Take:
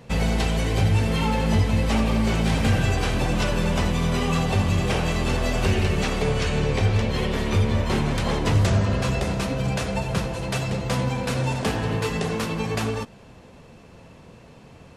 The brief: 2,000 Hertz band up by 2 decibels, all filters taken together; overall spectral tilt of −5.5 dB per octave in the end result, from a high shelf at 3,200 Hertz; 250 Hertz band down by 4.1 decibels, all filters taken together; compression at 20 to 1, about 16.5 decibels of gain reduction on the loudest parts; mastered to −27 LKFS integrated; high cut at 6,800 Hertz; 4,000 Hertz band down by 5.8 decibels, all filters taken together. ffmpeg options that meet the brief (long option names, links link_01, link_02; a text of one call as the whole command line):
ffmpeg -i in.wav -af "lowpass=6800,equalizer=frequency=250:width_type=o:gain=-6,equalizer=frequency=2000:width_type=o:gain=7,highshelf=frequency=3200:gain=-8.5,equalizer=frequency=4000:width_type=o:gain=-4.5,acompressor=threshold=-33dB:ratio=20,volume=11dB" out.wav